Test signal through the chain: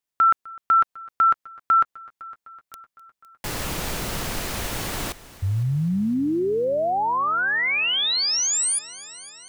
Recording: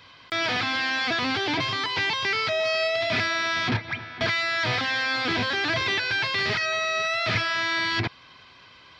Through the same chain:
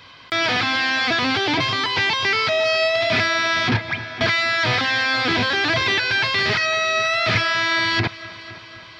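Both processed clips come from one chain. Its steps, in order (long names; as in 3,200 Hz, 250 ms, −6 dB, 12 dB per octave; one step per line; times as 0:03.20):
echo machine with several playback heads 254 ms, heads first and second, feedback 61%, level −22.5 dB
level +5.5 dB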